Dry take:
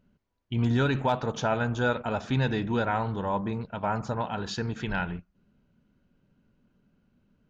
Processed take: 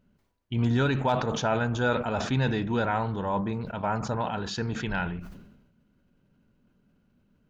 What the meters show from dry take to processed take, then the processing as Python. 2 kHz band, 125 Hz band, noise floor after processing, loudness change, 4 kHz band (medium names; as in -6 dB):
+0.5 dB, +0.5 dB, -68 dBFS, +0.5 dB, +1.5 dB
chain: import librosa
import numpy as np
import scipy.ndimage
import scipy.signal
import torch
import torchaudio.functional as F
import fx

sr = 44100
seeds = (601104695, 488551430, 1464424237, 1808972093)

y = fx.sustainer(x, sr, db_per_s=57.0)